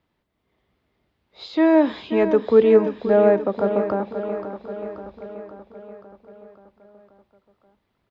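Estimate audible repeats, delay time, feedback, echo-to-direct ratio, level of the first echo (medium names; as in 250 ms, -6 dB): 6, 531 ms, 60%, -8.0 dB, -10.0 dB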